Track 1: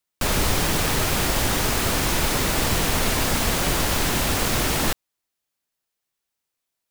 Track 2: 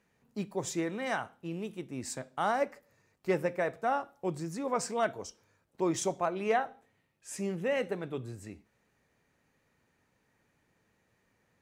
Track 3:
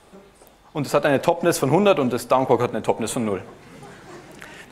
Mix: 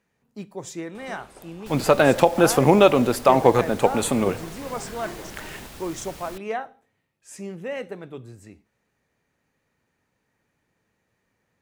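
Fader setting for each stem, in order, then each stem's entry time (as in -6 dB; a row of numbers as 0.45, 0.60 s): -20.0, -0.5, +2.0 dB; 1.45, 0.00, 0.95 s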